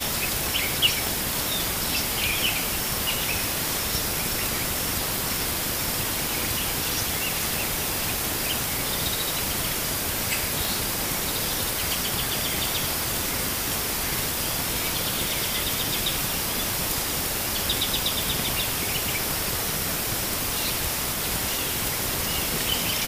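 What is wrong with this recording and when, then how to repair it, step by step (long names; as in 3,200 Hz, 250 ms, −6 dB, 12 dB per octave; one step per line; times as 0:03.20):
0:01.07: click
0:10.65: click
0:18.23: click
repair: click removal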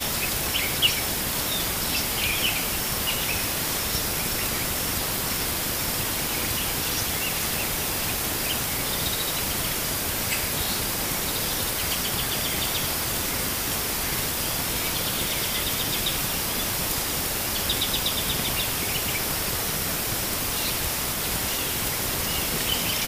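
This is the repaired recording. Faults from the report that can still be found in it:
none of them is left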